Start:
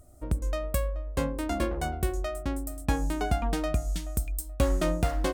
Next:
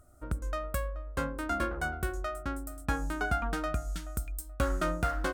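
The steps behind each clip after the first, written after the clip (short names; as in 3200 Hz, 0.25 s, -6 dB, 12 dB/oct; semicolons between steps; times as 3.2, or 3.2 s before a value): bell 1400 Hz +15 dB 0.49 oct; gain -5.5 dB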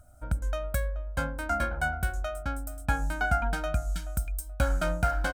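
comb 1.3 ms, depth 82%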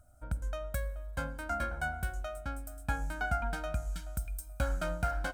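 reverb RT60 1.5 s, pre-delay 38 ms, DRR 18 dB; gain -6 dB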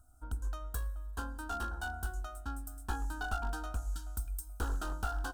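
one-sided fold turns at -29.5 dBFS; fixed phaser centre 580 Hz, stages 6; gain +1 dB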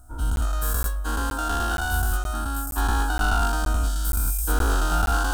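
spectral dilation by 0.24 s; crackling interface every 0.47 s, samples 512, zero, from 0.36; gain +8 dB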